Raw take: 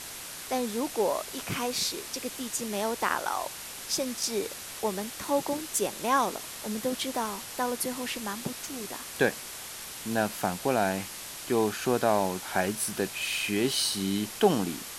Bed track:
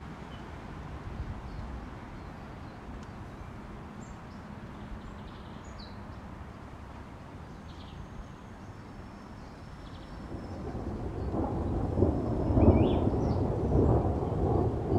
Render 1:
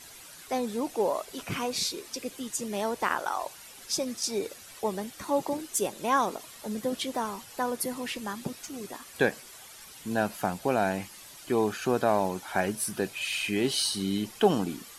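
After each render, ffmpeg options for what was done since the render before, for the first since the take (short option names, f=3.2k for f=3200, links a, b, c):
-af "afftdn=nr=11:nf=-41"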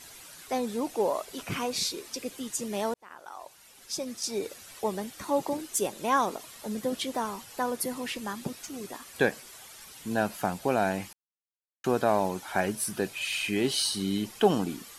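-filter_complex "[0:a]asplit=4[a][b][c][d];[a]atrim=end=2.94,asetpts=PTS-STARTPTS,afade=t=out:st=2.936:d=0.004:c=hsin[e];[b]atrim=start=2.94:end=11.13,asetpts=PTS-STARTPTS,afade=t=in:d=1.65,afade=t=out:st=8.186:d=0.004:c=hsin[f];[c]atrim=start=11.13:end=11.84,asetpts=PTS-STARTPTS,volume=0[g];[d]atrim=start=11.84,asetpts=PTS-STARTPTS,afade=t=in:d=0.004:c=hsin[h];[e][f][g][h]concat=n=4:v=0:a=1"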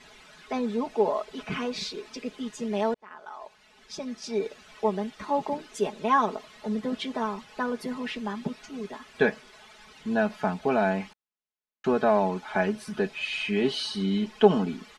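-af "lowpass=3.4k,aecho=1:1:4.7:0.78"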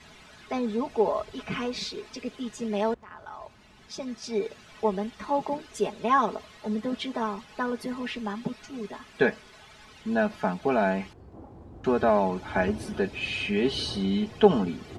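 -filter_complex "[1:a]volume=-15dB[a];[0:a][a]amix=inputs=2:normalize=0"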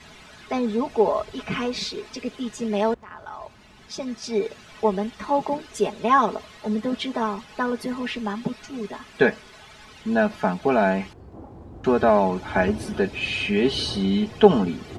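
-af "volume=4.5dB"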